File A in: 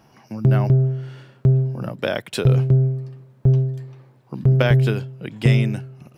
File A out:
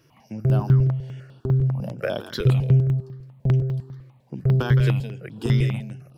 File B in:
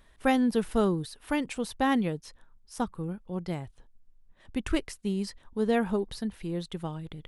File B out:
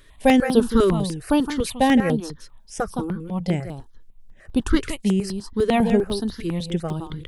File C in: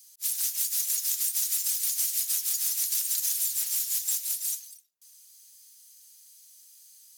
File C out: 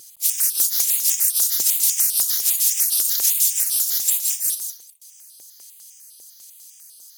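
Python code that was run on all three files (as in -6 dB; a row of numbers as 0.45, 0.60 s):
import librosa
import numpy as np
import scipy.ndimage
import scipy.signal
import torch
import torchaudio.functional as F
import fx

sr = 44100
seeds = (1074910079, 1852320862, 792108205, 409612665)

p1 = fx.vibrato(x, sr, rate_hz=1.9, depth_cents=8.9)
p2 = p1 + fx.echo_single(p1, sr, ms=166, db=-9.0, dry=0)
p3 = fx.phaser_held(p2, sr, hz=10.0, low_hz=210.0, high_hz=6900.0)
y = p3 * 10.0 ** (-22 / 20.0) / np.sqrt(np.mean(np.square(p3)))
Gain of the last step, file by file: -2.0, +10.5, +10.0 dB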